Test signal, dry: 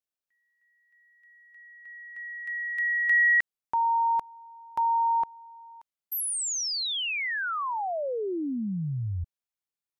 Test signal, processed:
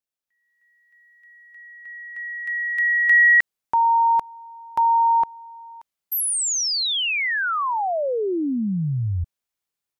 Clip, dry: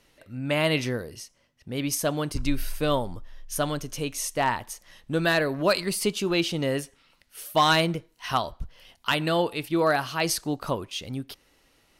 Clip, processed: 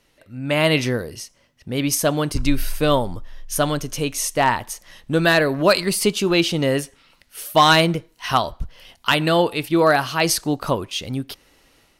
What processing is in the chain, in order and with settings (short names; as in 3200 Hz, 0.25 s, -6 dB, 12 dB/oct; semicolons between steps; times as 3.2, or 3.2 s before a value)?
AGC gain up to 7 dB